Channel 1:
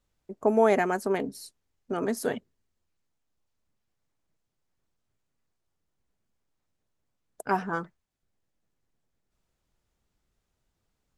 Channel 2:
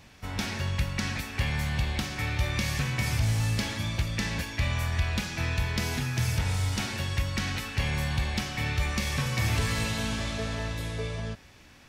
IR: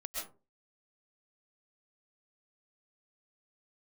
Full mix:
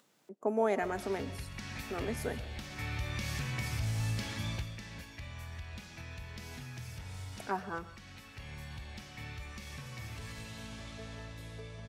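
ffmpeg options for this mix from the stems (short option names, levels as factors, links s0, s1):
-filter_complex "[0:a]highpass=f=170:w=0.5412,highpass=f=170:w=1.3066,volume=0.335,asplit=3[s0][s1][s2];[s1]volume=0.237[s3];[1:a]alimiter=limit=0.0708:level=0:latency=1:release=320,adelay=600,volume=0.596,afade=t=out:st=4.52:d=0.26:silence=0.354813,asplit=2[s4][s5];[s5]volume=0.251[s6];[s2]apad=whole_len=550472[s7];[s4][s7]sidechaincompress=threshold=0.00891:ratio=8:attack=43:release=1340[s8];[2:a]atrim=start_sample=2205[s9];[s3][s6]amix=inputs=2:normalize=0[s10];[s10][s9]afir=irnorm=-1:irlink=0[s11];[s0][s8][s11]amix=inputs=3:normalize=0,acompressor=mode=upward:threshold=0.00224:ratio=2.5"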